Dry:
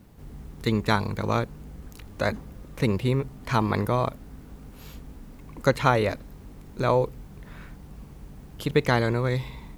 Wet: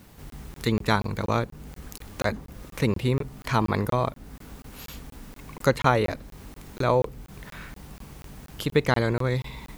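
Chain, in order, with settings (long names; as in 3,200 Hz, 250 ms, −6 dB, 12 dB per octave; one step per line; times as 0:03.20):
regular buffer underruns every 0.24 s, samples 1,024, zero, from 0:00.30
one half of a high-frequency compander encoder only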